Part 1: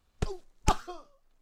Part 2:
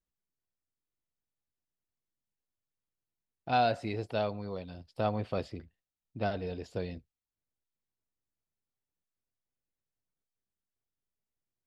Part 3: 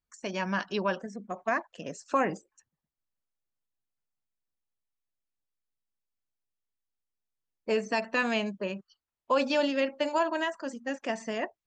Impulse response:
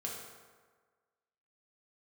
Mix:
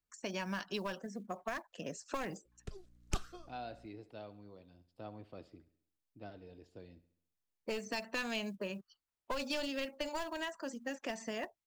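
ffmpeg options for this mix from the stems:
-filter_complex "[0:a]equalizer=frequency=870:width_type=o:width=0.41:gain=-13.5,aeval=exprs='val(0)+0.002*(sin(2*PI*60*n/s)+sin(2*PI*2*60*n/s)/2+sin(2*PI*3*60*n/s)/3+sin(2*PI*4*60*n/s)/4+sin(2*PI*5*60*n/s)/5)':channel_layout=same,adelay=2450,volume=-8dB[link_01];[1:a]equalizer=frequency=310:width_type=o:width=0.31:gain=9.5,volume=-18dB,asplit=2[link_02][link_03];[link_03]volume=-17.5dB[link_04];[2:a]acrusher=bits=9:mode=log:mix=0:aa=0.000001,aeval=exprs='clip(val(0),-1,0.0501)':channel_layout=same,volume=-2.5dB,asplit=2[link_05][link_06];[link_06]apad=whole_len=170422[link_07];[link_01][link_07]sidechaincompress=threshold=-37dB:ratio=8:attack=5.5:release=828[link_08];[link_04]aecho=0:1:68|136|204|272|340|408|476:1|0.49|0.24|0.118|0.0576|0.0282|0.0138[link_09];[link_08][link_02][link_05][link_09]amix=inputs=4:normalize=0,acrossover=split=120|3000[link_10][link_11][link_12];[link_11]acompressor=threshold=-37dB:ratio=6[link_13];[link_10][link_13][link_12]amix=inputs=3:normalize=0"

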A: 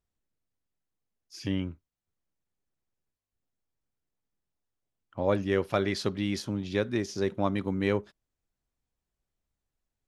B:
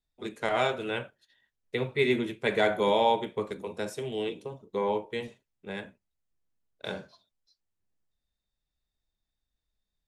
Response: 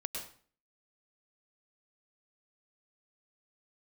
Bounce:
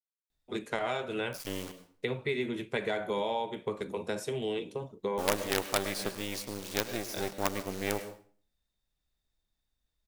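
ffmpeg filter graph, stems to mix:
-filter_complex "[0:a]acrusher=bits=4:dc=4:mix=0:aa=0.000001,bass=frequency=250:gain=-8,treble=frequency=4000:gain=6,volume=-4.5dB,asplit=3[link_01][link_02][link_03];[link_02]volume=-6dB[link_04];[1:a]acompressor=threshold=-32dB:ratio=5,adelay=300,volume=2.5dB[link_05];[link_03]apad=whole_len=457646[link_06];[link_05][link_06]sidechaincompress=threshold=-41dB:ratio=8:attack=16:release=390[link_07];[2:a]atrim=start_sample=2205[link_08];[link_04][link_08]afir=irnorm=-1:irlink=0[link_09];[link_01][link_07][link_09]amix=inputs=3:normalize=0"

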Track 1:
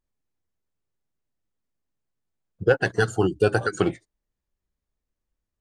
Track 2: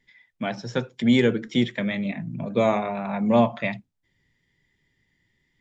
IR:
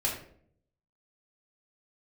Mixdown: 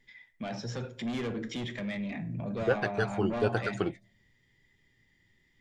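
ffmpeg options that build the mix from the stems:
-filter_complex "[0:a]lowpass=5300,volume=-8.5dB[link_01];[1:a]asoftclip=type=tanh:threshold=-21.5dB,alimiter=level_in=7.5dB:limit=-24dB:level=0:latency=1:release=13,volume=-7.5dB,volume=-0.5dB,asplit=2[link_02][link_03];[link_03]volume=-15dB[link_04];[2:a]atrim=start_sample=2205[link_05];[link_04][link_05]afir=irnorm=-1:irlink=0[link_06];[link_01][link_02][link_06]amix=inputs=3:normalize=0"

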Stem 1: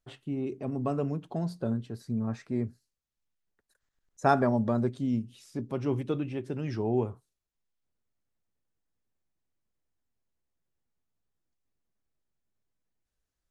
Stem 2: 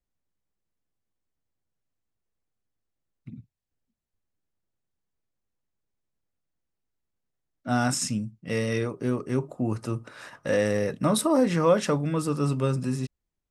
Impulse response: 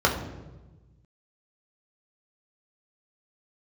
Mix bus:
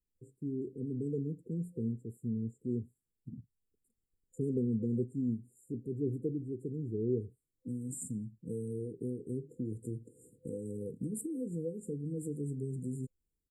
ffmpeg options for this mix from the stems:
-filter_complex "[0:a]adelay=150,volume=-4.5dB[link_01];[1:a]acompressor=threshold=-32dB:ratio=3,volume=-4dB[link_02];[link_01][link_02]amix=inputs=2:normalize=0,afftfilt=real='re*(1-between(b*sr/4096,510,7000))':imag='im*(1-between(b*sr/4096,510,7000))':win_size=4096:overlap=0.75"

